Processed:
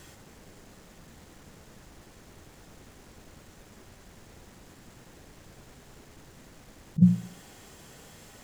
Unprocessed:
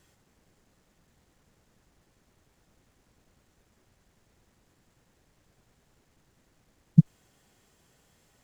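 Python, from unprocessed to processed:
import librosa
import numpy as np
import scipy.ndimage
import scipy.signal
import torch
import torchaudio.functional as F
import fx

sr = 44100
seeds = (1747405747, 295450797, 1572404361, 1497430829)

y = fx.hum_notches(x, sr, base_hz=60, count=3)
y = fx.over_compress(y, sr, threshold_db=-27.0, ratio=-1.0)
y = fx.echo_banded(y, sr, ms=69, feedback_pct=49, hz=300.0, wet_db=-7.0)
y = y * librosa.db_to_amplitude(8.0)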